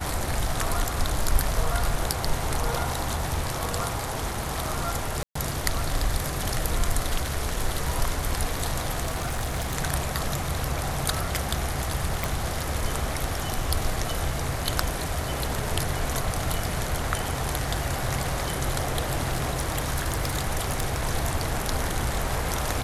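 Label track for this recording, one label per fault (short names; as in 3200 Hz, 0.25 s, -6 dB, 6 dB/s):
5.230000	5.350000	gap 0.124 s
9.020000	9.770000	clipped -23 dBFS
12.240000	12.240000	pop
19.350000	20.980000	clipped -19 dBFS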